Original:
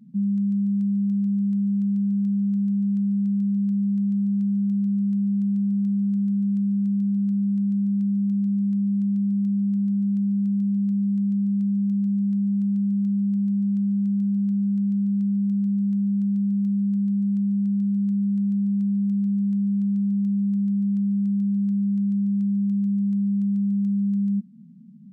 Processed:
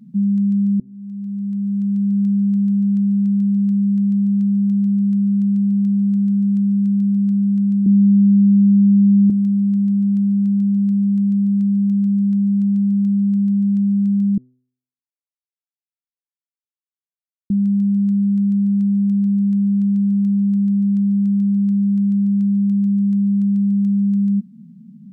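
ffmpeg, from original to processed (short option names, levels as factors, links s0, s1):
-filter_complex "[0:a]asettb=1/sr,asplit=3[s0][s1][s2];[s0]atrim=end=7.864[s3];[s1]atrim=start=7.86:end=9.3,asetpts=PTS-STARTPTS,afade=t=in:d=0.004:c=qsin,afade=t=out:st=1.436:d=0.004:c=qsin,lowpass=f=240:t=q:w=1.7[s4];[s2]atrim=start=9.296[s5];[s3][s4]acrossfade=d=0.004:c1=hsin:c2=qsin[s6];[s6][s5]acrossfade=d=0.004:c1=qsin:c2=hsin,asplit=4[s7][s8][s9][s10];[s7]atrim=end=0.8,asetpts=PTS-STARTPTS,afade=t=out:st=0.796:d=0.004:c=hsin[s11];[s8]atrim=start=0.8:end=14.38,asetpts=PTS-STARTPTS,afade=t=in:d=1.42,afade=t=out:st=13.576:d=0.004:c=hsin[s12];[s9]atrim=start=14.38:end=17.5,asetpts=PTS-STARTPTS,volume=0[s13];[s10]atrim=start=17.5,asetpts=PTS-STARTPTS,afade=t=in:d=0.004:c=hsin[s14];[s11][s12][s13][s14]concat=n=4:v=0:a=1,bandreject=f=126.5:t=h:w=4,bandreject=f=253:t=h:w=4,bandreject=f=379.5:t=h:w=4,bandreject=f=506:t=h:w=4,bandreject=f=632.5:t=h:w=4,bandreject=f=759:t=h:w=4,bandreject=f=885.5:t=h:w=4,bandreject=f=1012:t=h:w=4,bandreject=f=1138.5:t=h:w=4,bandreject=f=1265:t=h:w=4,volume=2"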